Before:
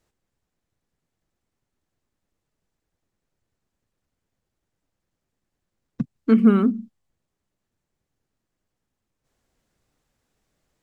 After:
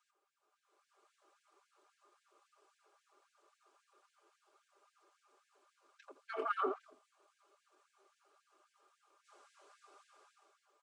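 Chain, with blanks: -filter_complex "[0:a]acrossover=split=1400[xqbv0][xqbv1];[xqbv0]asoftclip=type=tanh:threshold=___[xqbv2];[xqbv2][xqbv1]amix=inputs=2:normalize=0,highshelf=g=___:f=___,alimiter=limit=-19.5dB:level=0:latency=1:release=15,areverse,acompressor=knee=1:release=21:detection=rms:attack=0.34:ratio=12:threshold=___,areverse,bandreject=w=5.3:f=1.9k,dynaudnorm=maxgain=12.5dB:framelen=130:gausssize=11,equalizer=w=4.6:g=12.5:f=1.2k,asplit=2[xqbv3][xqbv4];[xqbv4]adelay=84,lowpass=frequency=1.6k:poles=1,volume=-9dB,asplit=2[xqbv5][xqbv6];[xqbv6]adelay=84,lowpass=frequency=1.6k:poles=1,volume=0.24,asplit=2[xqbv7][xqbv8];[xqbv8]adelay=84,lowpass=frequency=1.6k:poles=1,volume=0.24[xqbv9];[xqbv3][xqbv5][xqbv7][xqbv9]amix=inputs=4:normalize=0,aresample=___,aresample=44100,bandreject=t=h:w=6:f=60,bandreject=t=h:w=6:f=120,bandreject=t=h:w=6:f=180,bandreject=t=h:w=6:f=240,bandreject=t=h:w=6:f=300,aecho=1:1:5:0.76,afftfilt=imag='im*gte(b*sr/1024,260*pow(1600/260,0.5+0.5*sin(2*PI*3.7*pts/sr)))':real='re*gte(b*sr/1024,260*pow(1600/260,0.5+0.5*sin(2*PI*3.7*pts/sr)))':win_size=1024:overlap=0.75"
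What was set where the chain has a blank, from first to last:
-14dB, -8, 2.1k, -37dB, 22050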